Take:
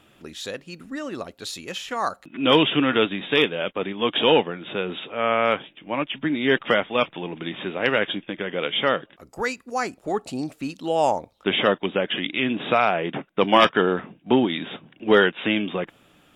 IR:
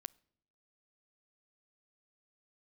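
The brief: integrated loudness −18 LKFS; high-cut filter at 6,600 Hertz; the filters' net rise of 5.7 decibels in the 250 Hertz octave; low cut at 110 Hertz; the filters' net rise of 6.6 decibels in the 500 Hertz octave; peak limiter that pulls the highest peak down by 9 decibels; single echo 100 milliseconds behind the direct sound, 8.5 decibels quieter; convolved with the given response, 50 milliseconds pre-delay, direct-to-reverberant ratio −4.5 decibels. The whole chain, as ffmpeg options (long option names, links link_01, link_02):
-filter_complex "[0:a]highpass=110,lowpass=6600,equalizer=frequency=250:width_type=o:gain=5,equalizer=frequency=500:width_type=o:gain=6.5,alimiter=limit=-8.5dB:level=0:latency=1,aecho=1:1:100:0.376,asplit=2[link_01][link_02];[1:a]atrim=start_sample=2205,adelay=50[link_03];[link_02][link_03]afir=irnorm=-1:irlink=0,volume=9.5dB[link_04];[link_01][link_04]amix=inputs=2:normalize=0,volume=-2.5dB"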